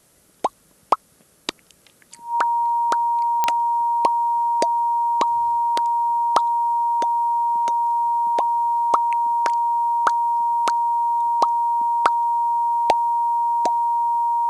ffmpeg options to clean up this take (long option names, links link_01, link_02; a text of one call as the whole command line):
ffmpeg -i in.wav -af "adeclick=threshold=4,bandreject=frequency=940:width=30,agate=range=-21dB:threshold=-49dB" out.wav